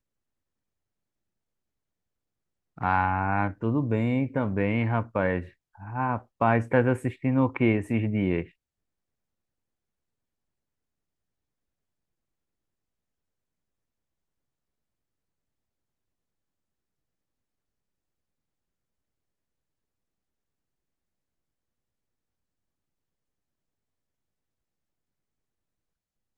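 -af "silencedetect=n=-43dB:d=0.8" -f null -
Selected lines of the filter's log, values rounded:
silence_start: 0.00
silence_end: 2.78 | silence_duration: 2.78
silence_start: 8.46
silence_end: 26.38 | silence_duration: 17.92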